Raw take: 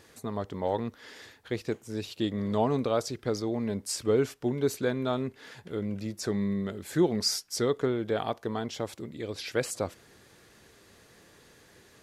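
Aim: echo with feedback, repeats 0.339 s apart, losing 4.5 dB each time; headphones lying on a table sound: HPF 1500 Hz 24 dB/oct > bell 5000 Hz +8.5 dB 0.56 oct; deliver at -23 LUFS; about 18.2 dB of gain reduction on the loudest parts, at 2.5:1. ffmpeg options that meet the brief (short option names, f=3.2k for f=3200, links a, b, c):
-af "acompressor=threshold=-49dB:ratio=2.5,highpass=f=1.5k:w=0.5412,highpass=f=1.5k:w=1.3066,equalizer=f=5k:t=o:w=0.56:g=8.5,aecho=1:1:339|678|1017|1356|1695|2034|2373|2712|3051:0.596|0.357|0.214|0.129|0.0772|0.0463|0.0278|0.0167|0.01,volume=23dB"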